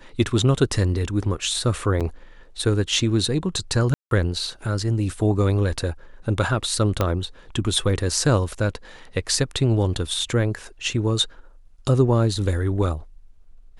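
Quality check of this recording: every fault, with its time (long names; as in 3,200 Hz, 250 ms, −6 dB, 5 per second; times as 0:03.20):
0:02.00–0:02.01: drop-out 6.8 ms
0:03.94–0:04.11: drop-out 172 ms
0:07.01: click −7 dBFS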